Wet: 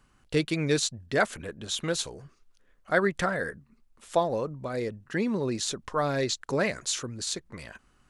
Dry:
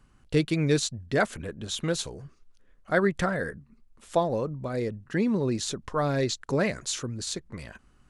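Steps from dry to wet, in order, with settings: low shelf 340 Hz -7 dB; gain +1.5 dB

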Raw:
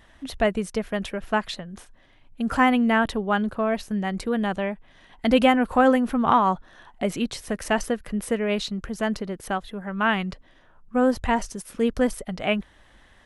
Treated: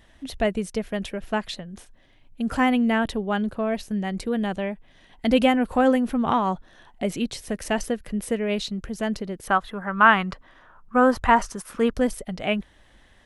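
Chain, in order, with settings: bell 1200 Hz -5.5 dB 1.2 oct, from 9.48 s +10.5 dB, from 11.91 s -4 dB

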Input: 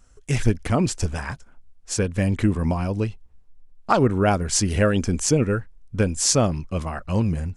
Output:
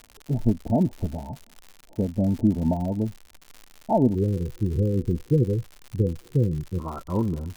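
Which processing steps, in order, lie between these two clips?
rippled Chebyshev low-pass 920 Hz, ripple 9 dB, from 4.14 s 510 Hz, from 6.78 s 1400 Hz; crackle 130/s -36 dBFS; gain +3 dB

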